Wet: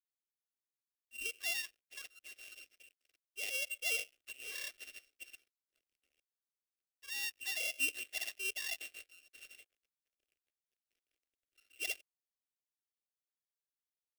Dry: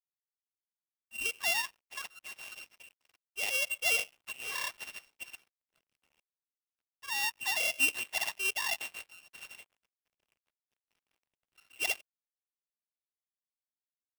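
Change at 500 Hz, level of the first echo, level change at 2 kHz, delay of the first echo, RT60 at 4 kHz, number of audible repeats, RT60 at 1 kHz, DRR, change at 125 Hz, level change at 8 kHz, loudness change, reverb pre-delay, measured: -8.5 dB, no echo, -7.0 dB, no echo, no reverb, no echo, no reverb, no reverb, no reading, -5.5 dB, -6.5 dB, no reverb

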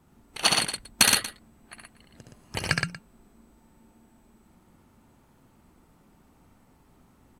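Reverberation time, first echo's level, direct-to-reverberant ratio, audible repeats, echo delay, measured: no reverb, -4.0 dB, no reverb, 3, 67 ms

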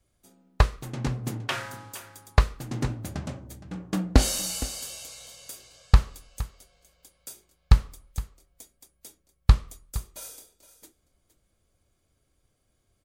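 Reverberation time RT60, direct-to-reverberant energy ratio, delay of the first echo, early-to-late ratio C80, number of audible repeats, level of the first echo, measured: no reverb, no reverb, 465 ms, no reverb, 1, -15.5 dB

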